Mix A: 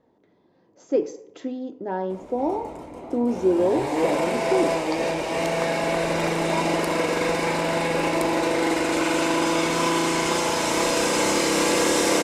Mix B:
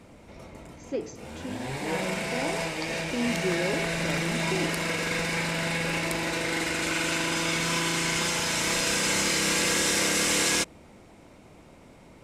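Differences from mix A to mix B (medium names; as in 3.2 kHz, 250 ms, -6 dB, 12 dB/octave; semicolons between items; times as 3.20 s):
background: entry -2.10 s; master: add high-order bell 540 Hz -10 dB 2.4 oct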